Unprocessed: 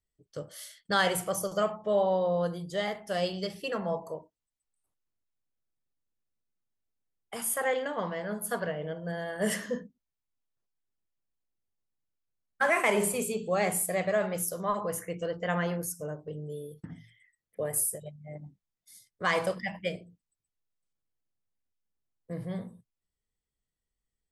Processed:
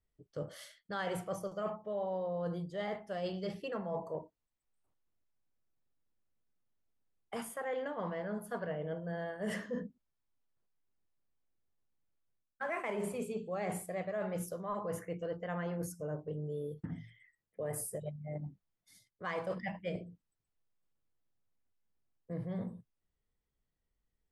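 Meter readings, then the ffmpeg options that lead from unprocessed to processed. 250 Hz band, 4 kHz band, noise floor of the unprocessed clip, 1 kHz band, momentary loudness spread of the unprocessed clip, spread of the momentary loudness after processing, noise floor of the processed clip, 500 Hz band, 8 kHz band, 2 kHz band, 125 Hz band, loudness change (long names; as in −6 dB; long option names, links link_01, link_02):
−5.0 dB, −13.5 dB, below −85 dBFS, −9.0 dB, 17 LU, 7 LU, below −85 dBFS, −7.5 dB, −15.0 dB, −11.5 dB, −3.5 dB, −9.0 dB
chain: -af "lowpass=frequency=1600:poles=1,areverse,acompressor=threshold=-40dB:ratio=5,areverse,volume=4dB"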